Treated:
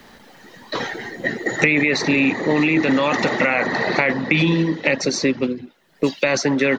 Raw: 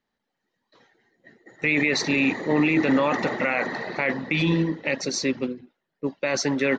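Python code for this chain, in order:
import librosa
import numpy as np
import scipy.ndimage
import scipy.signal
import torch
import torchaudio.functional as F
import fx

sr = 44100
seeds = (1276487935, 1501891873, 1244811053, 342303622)

y = fx.band_squash(x, sr, depth_pct=100)
y = y * 10.0 ** (4.5 / 20.0)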